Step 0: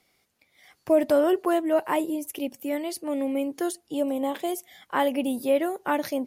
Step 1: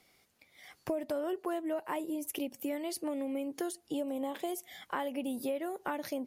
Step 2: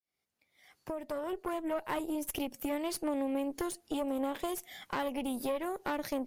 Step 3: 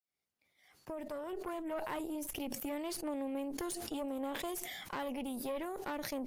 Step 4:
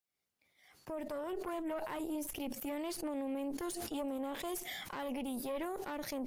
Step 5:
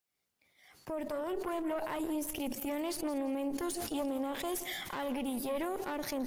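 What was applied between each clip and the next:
compression 6:1, threshold -34 dBFS, peak gain reduction 17.5 dB; trim +1 dB
fade-in on the opening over 1.82 s; valve stage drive 31 dB, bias 0.75; trim +5.5 dB
decay stretcher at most 27 dB/s; trim -5.5 dB
peak limiter -32.5 dBFS, peak gain reduction 11.5 dB; trim +2 dB
bit-crushed delay 171 ms, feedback 35%, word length 11-bit, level -14.5 dB; trim +3.5 dB

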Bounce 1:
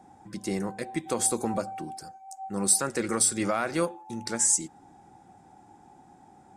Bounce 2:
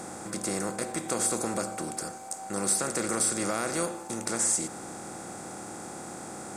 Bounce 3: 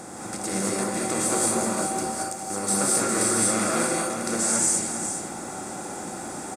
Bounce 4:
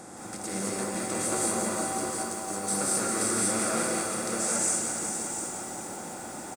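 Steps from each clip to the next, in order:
spectral levelling over time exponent 0.4; trim -7 dB
on a send: delay 406 ms -8.5 dB; on the sum: gated-style reverb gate 250 ms rising, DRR -4 dB
delay 708 ms -9.5 dB; bit-crushed delay 172 ms, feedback 80%, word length 7-bit, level -8.5 dB; trim -5.5 dB

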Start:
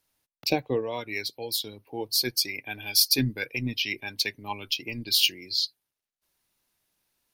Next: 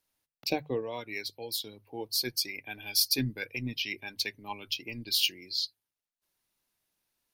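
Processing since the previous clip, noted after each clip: hum notches 50/100/150 Hz; trim -5 dB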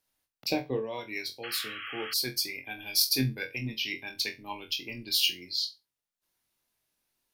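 flutter echo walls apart 3.9 m, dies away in 0.22 s; painted sound noise, 1.43–2.14 s, 1.1–3.3 kHz -40 dBFS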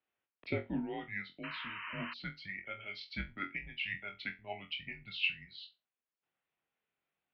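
mistuned SSB -200 Hz 350–3200 Hz; trim -3.5 dB

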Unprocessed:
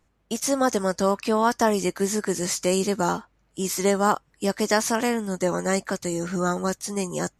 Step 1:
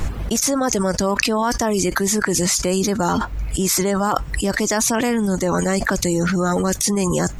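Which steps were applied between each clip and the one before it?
reverb removal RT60 0.6 s; bass shelf 120 Hz +12 dB; level flattener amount 100%; trim -2 dB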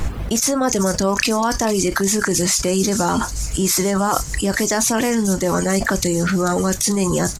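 in parallel at -11 dB: saturation -15.5 dBFS, distortion -13 dB; on the sum: doubling 31 ms -13.5 dB; feedback echo behind a high-pass 442 ms, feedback 70%, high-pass 5 kHz, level -8 dB; trim -1 dB

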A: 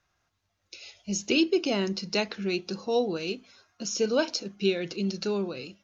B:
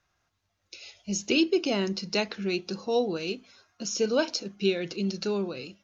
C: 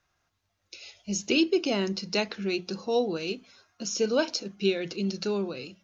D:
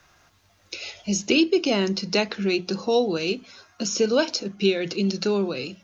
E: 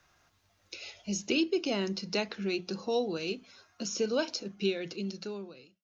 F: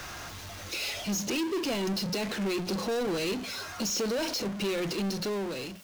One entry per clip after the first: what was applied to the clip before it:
no audible change
hum notches 60/120/180 Hz
three bands compressed up and down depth 40%; trim +5 dB
fade out at the end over 1.17 s; trim -9 dB
peak limiter -25.5 dBFS, peak gain reduction 9.5 dB; power-law waveshaper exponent 0.35

